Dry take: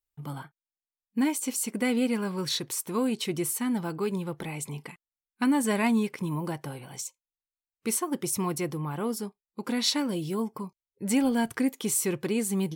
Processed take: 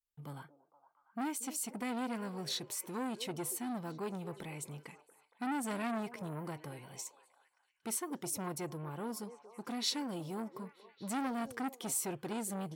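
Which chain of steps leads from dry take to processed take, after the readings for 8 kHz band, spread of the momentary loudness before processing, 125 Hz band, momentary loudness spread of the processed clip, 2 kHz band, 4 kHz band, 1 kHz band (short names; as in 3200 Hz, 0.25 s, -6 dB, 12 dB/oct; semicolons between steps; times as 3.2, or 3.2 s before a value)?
-8.5 dB, 14 LU, -10.5 dB, 13 LU, -10.0 dB, -8.5 dB, -6.0 dB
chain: delay with a stepping band-pass 0.232 s, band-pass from 470 Hz, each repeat 0.7 oct, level -11 dB; core saturation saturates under 1400 Hz; gain -8 dB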